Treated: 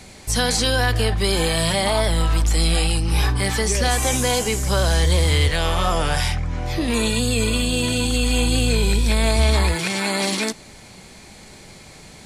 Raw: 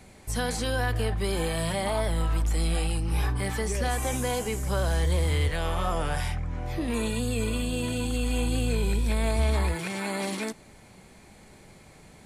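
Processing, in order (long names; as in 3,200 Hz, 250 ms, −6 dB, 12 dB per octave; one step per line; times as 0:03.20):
parametric band 4,900 Hz +8.5 dB 1.7 octaves
level +7 dB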